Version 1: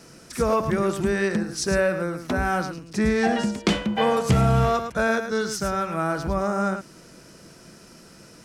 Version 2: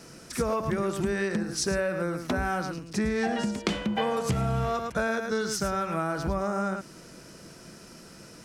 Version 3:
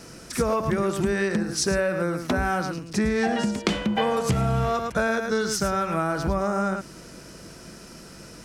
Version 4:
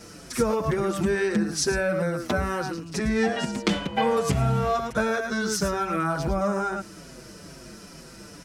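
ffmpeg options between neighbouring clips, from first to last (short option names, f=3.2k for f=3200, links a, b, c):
-af "acompressor=threshold=-24dB:ratio=6"
-af "aeval=exprs='val(0)+0.00112*(sin(2*PI*50*n/s)+sin(2*PI*2*50*n/s)/2+sin(2*PI*3*50*n/s)/3+sin(2*PI*4*50*n/s)/4+sin(2*PI*5*50*n/s)/5)':c=same,volume=4dB"
-filter_complex "[0:a]asplit=2[a][b];[b]adelay=6.1,afreqshift=-2.2[c];[a][c]amix=inputs=2:normalize=1,volume=2.5dB"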